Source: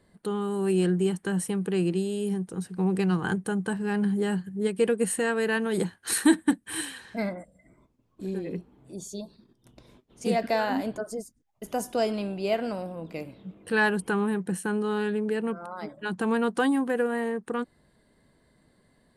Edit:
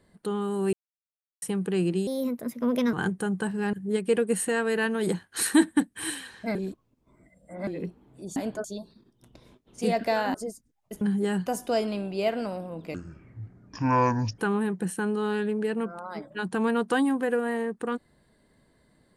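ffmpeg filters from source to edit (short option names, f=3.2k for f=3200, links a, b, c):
-filter_complex "[0:a]asplit=15[a][b][c][d][e][f][g][h][i][j][k][l][m][n][o];[a]atrim=end=0.73,asetpts=PTS-STARTPTS,afade=t=out:st=0.726:d=0.004:c=hsin[p];[b]atrim=start=0.73:end=1.42,asetpts=PTS-STARTPTS,volume=0[q];[c]atrim=start=1.42:end=2.074,asetpts=PTS-STARTPTS,afade=t=in:d=0.004:c=hsin[r];[d]atrim=start=2.07:end=3.19,asetpts=PTS-STARTPTS,asetrate=57330,aresample=44100[s];[e]atrim=start=3.186:end=3.992[t];[f]atrim=start=4.438:end=7.262[u];[g]atrim=start=7.258:end=8.382,asetpts=PTS-STARTPTS,areverse[v];[h]atrim=start=8.378:end=9.072[w];[i]atrim=start=10.768:end=11.052[x];[j]atrim=start=9.068:end=10.772[y];[k]atrim=start=11.048:end=11.722[z];[l]atrim=start=3.988:end=4.442[aa];[m]atrim=start=11.718:end=13.204[ab];[n]atrim=start=13.2:end=14.05,asetpts=PTS-STARTPTS,asetrate=26019,aresample=44100[ac];[o]atrim=start=14.046[ad];[p][q][r]concat=n=3:v=0:a=1[ae];[ae][s]acrossfade=d=0.004:c1=hsin:c2=hsin[af];[af][t]acrossfade=d=0.004:c1=hsin:c2=hsin[ag];[ag][u]acrossfade=d=0.004:c1=hsin:c2=hsin[ah];[ah][v]acrossfade=d=0.004:c1=hsin:c2=hsin[ai];[ai][w]acrossfade=d=0.004:c1=hsin:c2=hsin[aj];[aj][x]acrossfade=d=0.004:c1=hsin:c2=hsin[ak];[ak][y]acrossfade=d=0.004:c1=hsin:c2=hsin[al];[al][z]acrossfade=d=0.004:c1=hsin:c2=hsin[am];[am][aa]acrossfade=d=0.004:c1=hsin:c2=hsin[an];[an][ab]acrossfade=d=0.004:c1=hsin:c2=hsin[ao];[ao][ac]acrossfade=d=0.004:c1=hsin:c2=hsin[ap];[ap][ad]acrossfade=d=0.004:c1=hsin:c2=hsin"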